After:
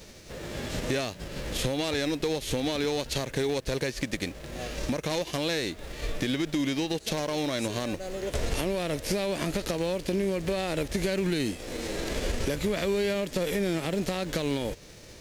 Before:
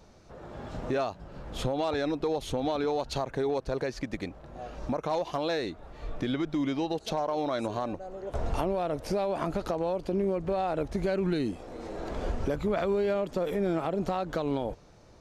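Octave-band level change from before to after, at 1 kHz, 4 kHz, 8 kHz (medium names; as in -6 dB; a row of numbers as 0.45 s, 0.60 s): -4.5 dB, +9.0 dB, +13.0 dB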